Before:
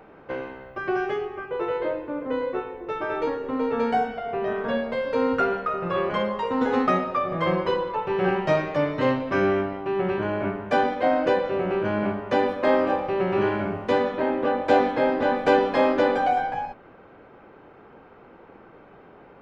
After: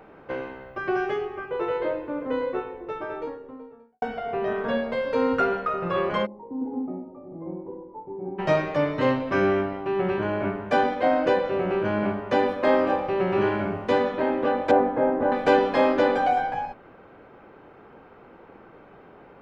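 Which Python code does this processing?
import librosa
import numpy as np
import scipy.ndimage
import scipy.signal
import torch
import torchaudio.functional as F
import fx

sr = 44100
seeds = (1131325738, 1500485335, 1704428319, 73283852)

y = fx.studio_fade_out(x, sr, start_s=2.41, length_s=1.61)
y = fx.formant_cascade(y, sr, vowel='u', at=(6.25, 8.38), fade=0.02)
y = fx.lowpass(y, sr, hz=1200.0, slope=12, at=(14.71, 15.32))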